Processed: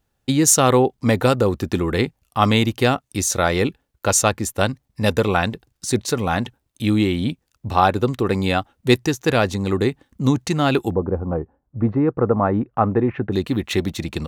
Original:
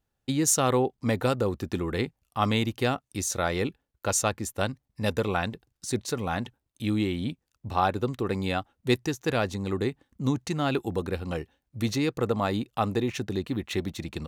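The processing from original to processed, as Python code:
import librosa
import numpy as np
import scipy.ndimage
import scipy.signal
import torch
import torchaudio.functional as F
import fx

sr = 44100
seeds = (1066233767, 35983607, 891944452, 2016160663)

y = fx.lowpass(x, sr, hz=fx.line((10.91, 1000.0), (13.32, 1900.0)), slope=24, at=(10.91, 13.32), fade=0.02)
y = y * librosa.db_to_amplitude(8.5)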